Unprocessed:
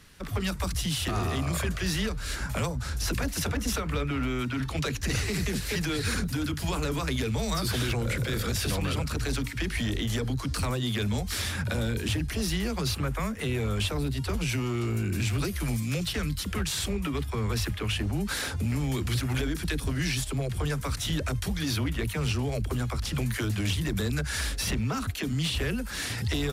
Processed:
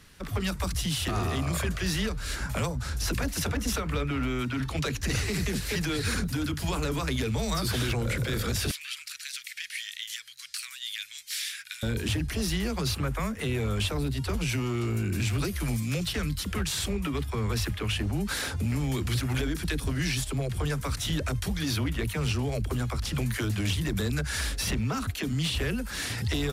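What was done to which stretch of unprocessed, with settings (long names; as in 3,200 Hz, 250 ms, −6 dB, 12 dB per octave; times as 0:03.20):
0:08.71–0:11.83: inverse Chebyshev high-pass filter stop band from 740 Hz, stop band 50 dB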